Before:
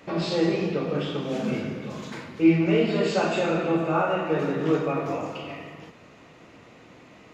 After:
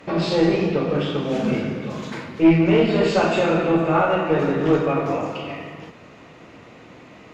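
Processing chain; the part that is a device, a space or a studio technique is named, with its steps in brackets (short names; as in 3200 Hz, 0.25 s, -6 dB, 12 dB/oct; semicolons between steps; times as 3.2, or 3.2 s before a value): tube preamp driven hard (tube stage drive 13 dB, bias 0.4; high shelf 5900 Hz -6 dB); gain +7 dB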